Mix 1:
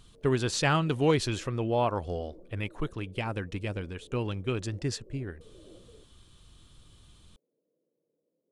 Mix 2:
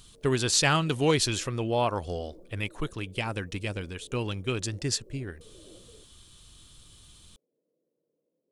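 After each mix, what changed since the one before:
master: add high-shelf EQ 3,200 Hz +11.5 dB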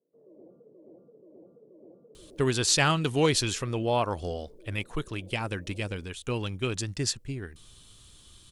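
speech: entry +2.15 s

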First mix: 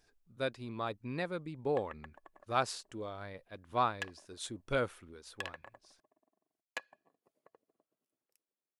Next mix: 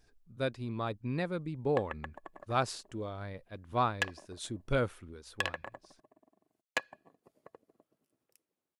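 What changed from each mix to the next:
background +8.0 dB
master: add low-shelf EQ 250 Hz +9 dB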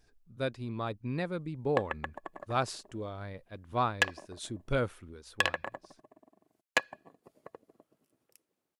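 background +5.5 dB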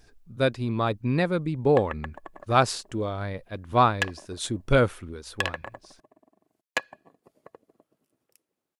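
speech +10.0 dB

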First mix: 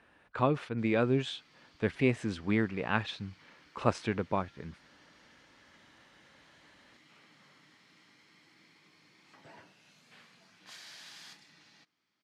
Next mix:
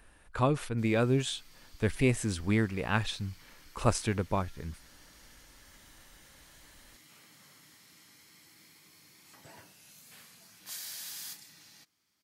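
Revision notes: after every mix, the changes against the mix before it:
master: remove band-pass filter 140–3,500 Hz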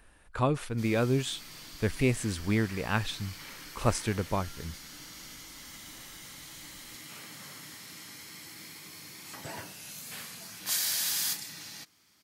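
background +12.0 dB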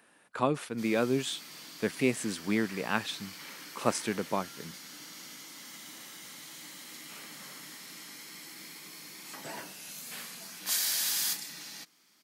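master: add high-pass filter 170 Hz 24 dB per octave

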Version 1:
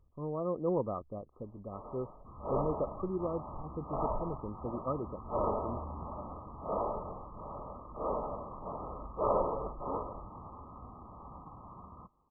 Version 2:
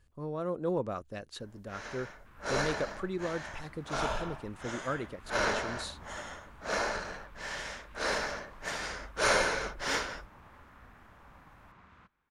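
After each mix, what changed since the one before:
second sound −8.5 dB
master: remove linear-phase brick-wall low-pass 1,300 Hz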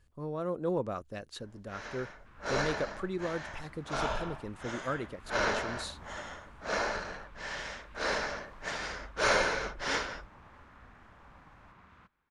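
first sound: add low-pass filter 6,400 Hz 12 dB per octave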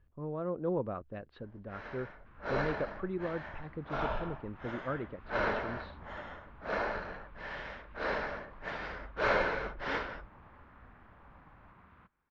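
speech: add high-frequency loss of the air 230 metres
master: add high-frequency loss of the air 350 metres

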